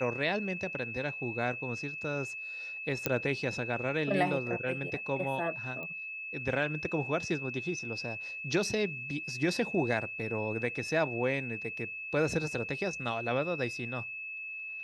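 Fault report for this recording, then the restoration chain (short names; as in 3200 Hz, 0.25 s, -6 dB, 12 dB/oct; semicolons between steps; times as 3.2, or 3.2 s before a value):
tone 2600 Hz -38 dBFS
3.06 pop -12 dBFS
5.83 pop -29 dBFS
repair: de-click; notch 2600 Hz, Q 30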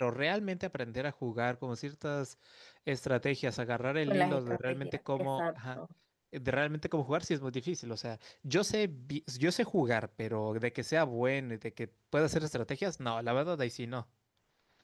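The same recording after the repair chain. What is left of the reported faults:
none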